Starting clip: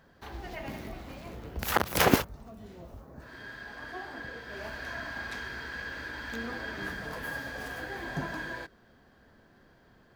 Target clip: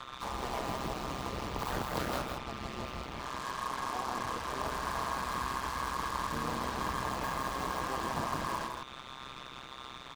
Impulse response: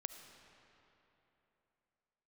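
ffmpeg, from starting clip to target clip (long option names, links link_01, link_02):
-filter_complex "[0:a]asplit=4[link_01][link_02][link_03][link_04];[link_02]asetrate=29433,aresample=44100,atempo=1.49831,volume=-3dB[link_05];[link_03]asetrate=55563,aresample=44100,atempo=0.793701,volume=-9dB[link_06];[link_04]asetrate=66075,aresample=44100,atempo=0.66742,volume=-16dB[link_07];[link_01][link_05][link_06][link_07]amix=inputs=4:normalize=0,equalizer=frequency=1000:width_type=o:width=0.67:gain=12,equalizer=frequency=4000:width_type=o:width=0.67:gain=9,equalizer=frequency=10000:width_type=o:width=0.67:gain=-10,afftfilt=real='re*lt(hypot(re,im),0.355)':imag='im*lt(hypot(re,im),0.355)':win_size=1024:overlap=0.75,acrossover=split=230|1200|7400[link_08][link_09][link_10][link_11];[link_08]acompressor=threshold=-41dB:ratio=4[link_12];[link_09]acompressor=threshold=-37dB:ratio=4[link_13];[link_10]acompressor=threshold=-52dB:ratio=4[link_14];[link_11]acompressor=threshold=-57dB:ratio=4[link_15];[link_12][link_13][link_14][link_15]amix=inputs=4:normalize=0,aeval=exprs='val(0)+0.00794*sin(2*PI*1200*n/s)':channel_layout=same,tremolo=f=130:d=0.71,acrusher=bits=6:mix=0:aa=0.5,acompressor=mode=upward:threshold=-44dB:ratio=2.5,aecho=1:1:162:0.596,volume=4dB"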